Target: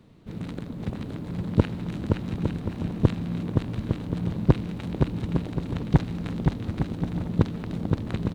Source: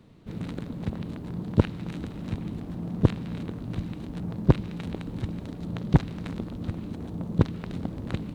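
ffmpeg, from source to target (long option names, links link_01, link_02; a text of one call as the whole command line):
ffmpeg -i in.wav -af "aecho=1:1:520|858|1078|1221|1313:0.631|0.398|0.251|0.158|0.1" out.wav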